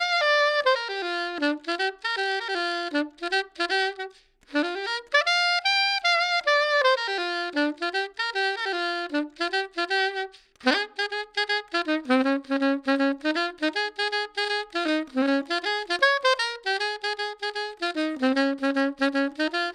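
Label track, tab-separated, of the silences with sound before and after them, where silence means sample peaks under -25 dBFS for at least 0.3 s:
4.050000	4.550000	silence
10.250000	10.660000	silence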